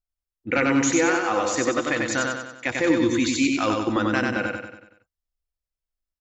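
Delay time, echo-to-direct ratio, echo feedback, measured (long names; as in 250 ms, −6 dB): 94 ms, −2.0 dB, 49%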